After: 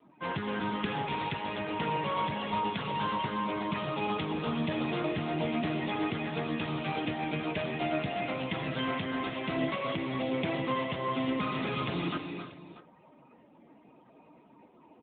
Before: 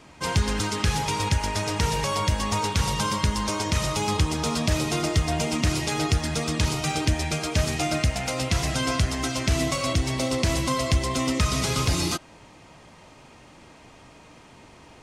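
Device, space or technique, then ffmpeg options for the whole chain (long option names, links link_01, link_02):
mobile call with aggressive noise cancelling: -af "highpass=frequency=150:width=0.5412,highpass=frequency=150:width=1.3066,lowpass=frequency=8100:width=0.5412,lowpass=frequency=8100:width=1.3066,aecho=1:1:259|263|273|319|337|637:0.282|0.211|0.251|0.224|0.133|0.168,afftdn=noise_reduction=19:noise_floor=-46,volume=-4.5dB" -ar 8000 -c:a libopencore_amrnb -b:a 10200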